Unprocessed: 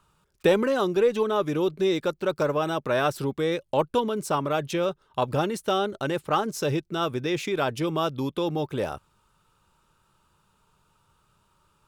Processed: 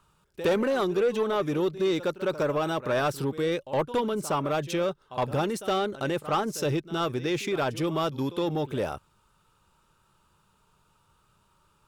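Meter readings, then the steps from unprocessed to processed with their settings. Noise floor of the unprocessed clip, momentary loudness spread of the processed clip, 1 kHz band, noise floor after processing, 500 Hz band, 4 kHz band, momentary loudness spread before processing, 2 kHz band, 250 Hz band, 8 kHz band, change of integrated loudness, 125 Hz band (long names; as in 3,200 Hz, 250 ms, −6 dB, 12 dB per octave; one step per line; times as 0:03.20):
−68 dBFS, 4 LU, −2.0 dB, −67 dBFS, −2.0 dB, −2.0 dB, 6 LU, −1.5 dB, −1.0 dB, −0.5 dB, −2.0 dB, −1.0 dB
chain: echo ahead of the sound 66 ms −17 dB
soft clipping −18.5 dBFS, distortion −15 dB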